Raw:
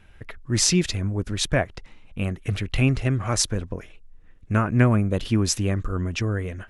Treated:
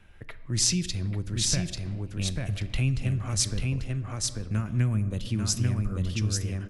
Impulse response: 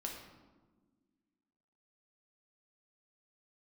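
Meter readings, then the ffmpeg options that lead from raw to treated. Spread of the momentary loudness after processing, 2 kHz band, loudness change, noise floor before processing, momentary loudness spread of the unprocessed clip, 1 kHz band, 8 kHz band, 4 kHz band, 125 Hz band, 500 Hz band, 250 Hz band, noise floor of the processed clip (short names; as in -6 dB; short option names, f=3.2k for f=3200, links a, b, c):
8 LU, -9.0 dB, -4.5 dB, -49 dBFS, 12 LU, -13.0 dB, -1.5 dB, -2.5 dB, -3.0 dB, -12.5 dB, -7.0 dB, -43 dBFS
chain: -filter_complex "[0:a]aecho=1:1:841:0.668,asplit=2[a][b];[1:a]atrim=start_sample=2205[c];[b][c]afir=irnorm=-1:irlink=0,volume=-8dB[d];[a][d]amix=inputs=2:normalize=0,acrossover=split=180|3000[e][f][g];[f]acompressor=threshold=-34dB:ratio=5[h];[e][h][g]amix=inputs=3:normalize=0,volume=-5dB"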